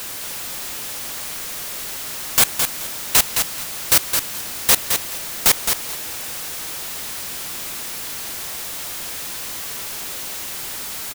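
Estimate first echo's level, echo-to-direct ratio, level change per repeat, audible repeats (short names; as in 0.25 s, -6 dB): -6.0 dB, -6.0 dB, -14.0 dB, 2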